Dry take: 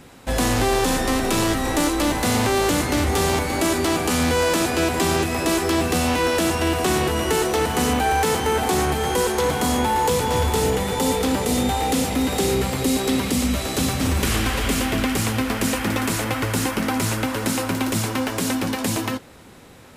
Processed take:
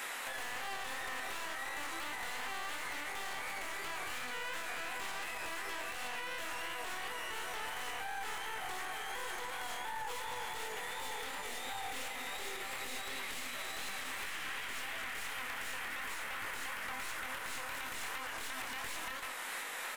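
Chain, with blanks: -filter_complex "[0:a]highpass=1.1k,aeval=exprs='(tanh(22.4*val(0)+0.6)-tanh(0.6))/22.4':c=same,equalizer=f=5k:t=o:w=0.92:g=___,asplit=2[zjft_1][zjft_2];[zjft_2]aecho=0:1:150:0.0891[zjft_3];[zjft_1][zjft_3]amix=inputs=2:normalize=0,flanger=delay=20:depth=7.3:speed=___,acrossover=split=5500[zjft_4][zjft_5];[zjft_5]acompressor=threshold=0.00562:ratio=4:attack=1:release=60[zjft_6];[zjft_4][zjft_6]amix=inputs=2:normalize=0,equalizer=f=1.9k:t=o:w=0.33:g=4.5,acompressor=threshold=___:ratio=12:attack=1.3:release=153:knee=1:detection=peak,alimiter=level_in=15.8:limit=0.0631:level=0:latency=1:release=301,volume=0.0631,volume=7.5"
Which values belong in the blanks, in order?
-6, 2.8, 0.00398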